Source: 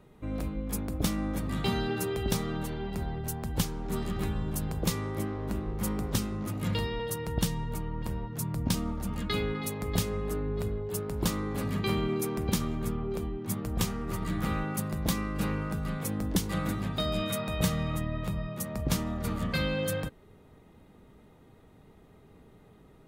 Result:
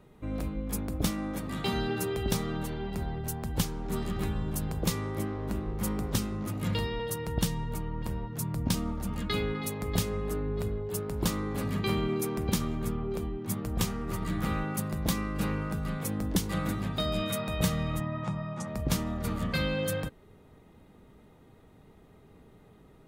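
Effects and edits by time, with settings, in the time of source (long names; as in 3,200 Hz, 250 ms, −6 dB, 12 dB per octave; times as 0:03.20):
0:01.10–0:01.74: low-shelf EQ 110 Hz −10 dB
0:18.00–0:18.68: loudspeaker in its box 130–7,400 Hz, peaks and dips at 140 Hz +7 dB, 430 Hz −7 dB, 860 Hz +9 dB, 1,300 Hz +4 dB, 2,900 Hz −4 dB, 4,200 Hz −6 dB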